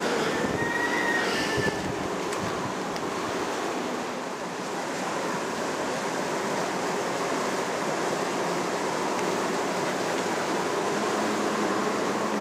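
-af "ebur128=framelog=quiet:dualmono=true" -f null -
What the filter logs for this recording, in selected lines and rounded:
Integrated loudness:
  I:         -24.6 LUFS
  Threshold: -34.6 LUFS
Loudness range:
  LRA:         3.2 LU
  Threshold: -45.1 LUFS
  LRA low:   -27.0 LUFS
  LRA high:  -23.8 LUFS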